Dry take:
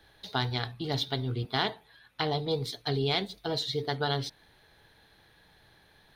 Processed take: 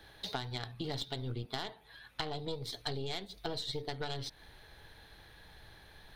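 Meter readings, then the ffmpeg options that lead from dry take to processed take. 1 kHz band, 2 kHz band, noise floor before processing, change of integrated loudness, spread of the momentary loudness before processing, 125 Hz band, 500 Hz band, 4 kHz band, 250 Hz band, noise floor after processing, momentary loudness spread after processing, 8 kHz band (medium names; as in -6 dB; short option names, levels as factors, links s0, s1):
-9.0 dB, -9.0 dB, -62 dBFS, -8.5 dB, 5 LU, -9.0 dB, -9.0 dB, -7.5 dB, -8.5 dB, -59 dBFS, 18 LU, -3.0 dB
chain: -af "aeval=exprs='(tanh(8.91*val(0)+0.7)-tanh(0.7))/8.91':c=same,acompressor=threshold=0.00794:ratio=12,asubboost=boost=2.5:cutoff=91,volume=2.37"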